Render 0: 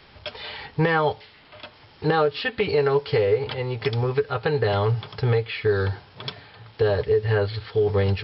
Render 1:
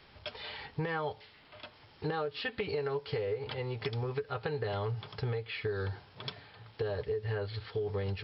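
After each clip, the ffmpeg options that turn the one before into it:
ffmpeg -i in.wav -af "acompressor=threshold=-24dB:ratio=4,volume=-7.5dB" out.wav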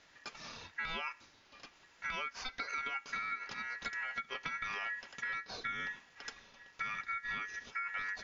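ffmpeg -i in.wav -af "aeval=exprs='val(0)*sin(2*PI*1800*n/s)':channel_layout=same,volume=-2.5dB" out.wav

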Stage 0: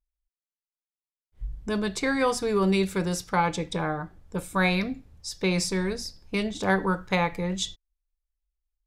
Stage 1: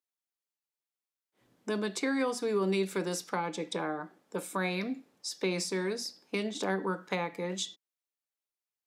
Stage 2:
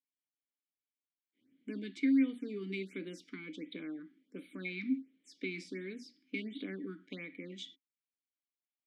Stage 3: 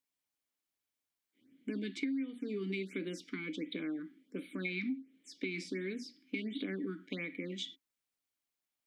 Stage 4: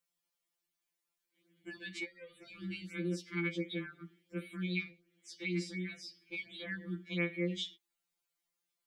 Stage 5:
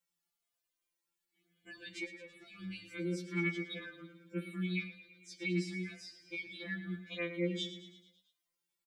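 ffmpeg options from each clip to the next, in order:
ffmpeg -i in.wav -filter_complex "[0:a]highpass=frequency=240:width=0.5412,highpass=frequency=240:width=1.3066,acrossover=split=330[link_01][link_02];[link_02]acompressor=threshold=-34dB:ratio=3[link_03];[link_01][link_03]amix=inputs=2:normalize=0" out.wav
ffmpeg -i in.wav -filter_complex "[0:a]asplit=3[link_01][link_02][link_03];[link_01]bandpass=frequency=270:width_type=q:width=8,volume=0dB[link_04];[link_02]bandpass=frequency=2290:width_type=q:width=8,volume=-6dB[link_05];[link_03]bandpass=frequency=3010:width_type=q:width=8,volume=-9dB[link_06];[link_04][link_05][link_06]amix=inputs=3:normalize=0,afftfilt=real='re*(1-between(b*sr/1024,520*pow(6600/520,0.5+0.5*sin(2*PI*1.4*pts/sr))/1.41,520*pow(6600/520,0.5+0.5*sin(2*PI*1.4*pts/sr))*1.41))':imag='im*(1-between(b*sr/1024,520*pow(6600/520,0.5+0.5*sin(2*PI*1.4*pts/sr))/1.41,520*pow(6600/520,0.5+0.5*sin(2*PI*1.4*pts/sr))*1.41))':win_size=1024:overlap=0.75,volume=5dB" out.wav
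ffmpeg -i in.wav -af "acompressor=threshold=-39dB:ratio=10,volume=5.5dB" out.wav
ffmpeg -i in.wav -af "afftfilt=real='re*2.83*eq(mod(b,8),0)':imag='im*2.83*eq(mod(b,8),0)':win_size=2048:overlap=0.75,volume=4dB" out.wav
ffmpeg -i in.wav -filter_complex "[0:a]aecho=1:1:111|222|333|444|555|666:0.237|0.135|0.077|0.0439|0.025|0.0143,asplit=2[link_01][link_02];[link_02]adelay=3.2,afreqshift=0.92[link_03];[link_01][link_03]amix=inputs=2:normalize=1,volume=2dB" out.wav

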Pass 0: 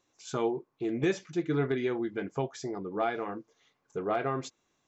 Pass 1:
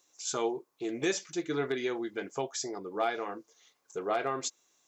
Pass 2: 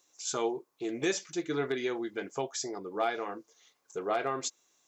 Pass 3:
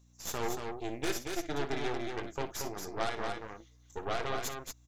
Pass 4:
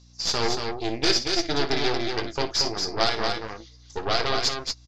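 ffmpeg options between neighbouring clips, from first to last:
ffmpeg -i in.wav -af "bass=frequency=250:gain=-12,treble=frequency=4000:gain=13" out.wav
ffmpeg -i in.wav -af anull out.wav
ffmpeg -i in.wav -filter_complex "[0:a]aeval=exprs='0.141*(cos(1*acos(clip(val(0)/0.141,-1,1)))-cos(1*PI/2))+0.0447*(cos(4*acos(clip(val(0)/0.141,-1,1)))-cos(4*PI/2))+0.0631*(cos(6*acos(clip(val(0)/0.141,-1,1)))-cos(6*PI/2))':channel_layout=same,aeval=exprs='val(0)+0.00178*(sin(2*PI*60*n/s)+sin(2*PI*2*60*n/s)/2+sin(2*PI*3*60*n/s)/3+sin(2*PI*4*60*n/s)/4+sin(2*PI*5*60*n/s)/5)':channel_layout=same,asplit=2[link_01][link_02];[link_02]aecho=0:1:58|231:0.211|0.562[link_03];[link_01][link_03]amix=inputs=2:normalize=0,volume=-6dB" out.wav
ffmpeg -i in.wav -filter_complex "[0:a]lowpass=frequency=4800:width_type=q:width=7.5,asplit=2[link_01][link_02];[link_02]adelay=18,volume=-14dB[link_03];[link_01][link_03]amix=inputs=2:normalize=0,volume=8.5dB" out.wav

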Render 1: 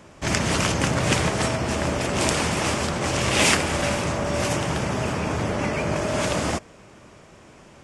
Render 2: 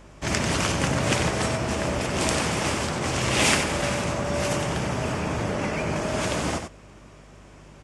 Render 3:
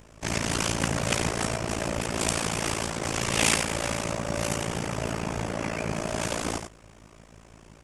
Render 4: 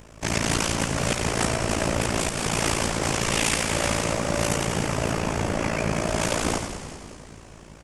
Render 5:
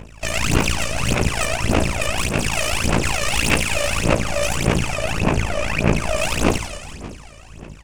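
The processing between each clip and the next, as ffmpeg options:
ffmpeg -i in.wav -filter_complex "[0:a]aeval=exprs='val(0)+0.00501*(sin(2*PI*50*n/s)+sin(2*PI*2*50*n/s)/2+sin(2*PI*3*50*n/s)/3+sin(2*PI*4*50*n/s)/4+sin(2*PI*5*50*n/s)/5)':channel_layout=same,asplit=2[link_01][link_02];[link_02]aecho=0:1:93:0.422[link_03];[link_01][link_03]amix=inputs=2:normalize=0,volume=-2.5dB" out.wav
ffmpeg -i in.wav -af "highshelf=frequency=9200:gain=10.5,tremolo=f=56:d=0.919" out.wav
ffmpeg -i in.wav -filter_complex "[0:a]alimiter=limit=-15dB:level=0:latency=1:release=266,asplit=2[link_01][link_02];[link_02]asplit=7[link_03][link_04][link_05][link_06][link_07][link_08][link_09];[link_03]adelay=192,afreqshift=-110,volume=-10dB[link_10];[link_04]adelay=384,afreqshift=-220,volume=-14.7dB[link_11];[link_05]adelay=576,afreqshift=-330,volume=-19.5dB[link_12];[link_06]adelay=768,afreqshift=-440,volume=-24.2dB[link_13];[link_07]adelay=960,afreqshift=-550,volume=-28.9dB[link_14];[link_08]adelay=1152,afreqshift=-660,volume=-33.7dB[link_15];[link_09]adelay=1344,afreqshift=-770,volume=-38.4dB[link_16];[link_10][link_11][link_12][link_13][link_14][link_15][link_16]amix=inputs=7:normalize=0[link_17];[link_01][link_17]amix=inputs=2:normalize=0,volume=4.5dB" out.wav
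ffmpeg -i in.wav -af "aeval=exprs='(tanh(11.2*val(0)+0.7)-tanh(0.7))/11.2':channel_layout=same,equalizer=frequency=2600:width_type=o:width=0.33:gain=9,aphaser=in_gain=1:out_gain=1:delay=1.7:decay=0.75:speed=1.7:type=sinusoidal,volume=2.5dB" out.wav

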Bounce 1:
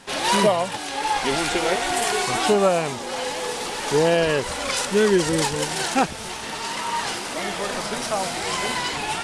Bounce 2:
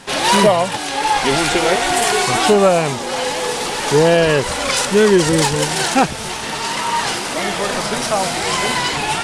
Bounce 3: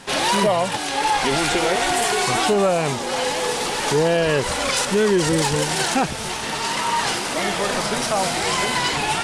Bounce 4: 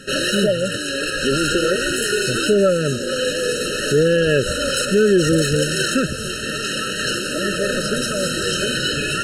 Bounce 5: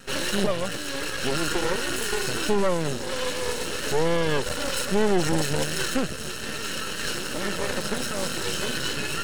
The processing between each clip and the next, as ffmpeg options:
ffmpeg -i in.wav -af "equalizer=frequency=140:width=3.9:gain=4,acontrast=81" out.wav
ffmpeg -i in.wav -af "alimiter=limit=-9dB:level=0:latency=1:release=51,volume=-2dB" out.wav
ffmpeg -i in.wav -af "acontrast=54,afftfilt=real='re*eq(mod(floor(b*sr/1024/630),2),0)':imag='im*eq(mod(floor(b*sr/1024/630),2),0)':win_size=1024:overlap=0.75,volume=-2dB" out.wav
ffmpeg -i in.wav -af "aeval=exprs='max(val(0),0)':channel_layout=same,volume=-3dB" out.wav

